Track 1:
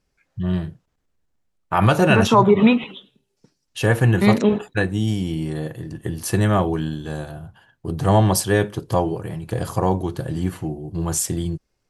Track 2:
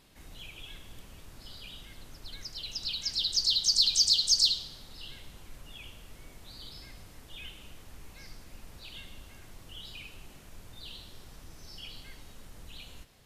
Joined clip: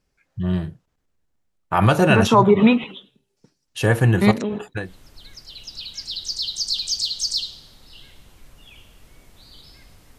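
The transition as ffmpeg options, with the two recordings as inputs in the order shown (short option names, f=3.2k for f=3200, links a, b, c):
-filter_complex "[0:a]asettb=1/sr,asplit=3[a][b][c];[a]atrim=end=4.314[d];[b]atrim=start=4.31:end=4.93,asetpts=PTS-STARTPTS,afade=t=in:d=0.004:c=qsin,afade=t=out:st=0.616:d=0.004:c=qsin,acompressor=threshold=-23dB:ratio=3:attack=3.2:release=140:knee=1:detection=peak[e];[c]atrim=start=4.926[f];[d][e]acrossfade=d=0.004:c1=hsin:c2=qsin[g];[g][f]acrossfade=d=0.004:c1=qsin:c2=hsin,apad=whole_dur=10.18,atrim=end=10.18,atrim=end=4.93,asetpts=PTS-STARTPTS[h];[1:a]atrim=start=1.85:end=7.26,asetpts=PTS-STARTPTS[i];[h][i]acrossfade=d=0.16:c1=tri:c2=tri"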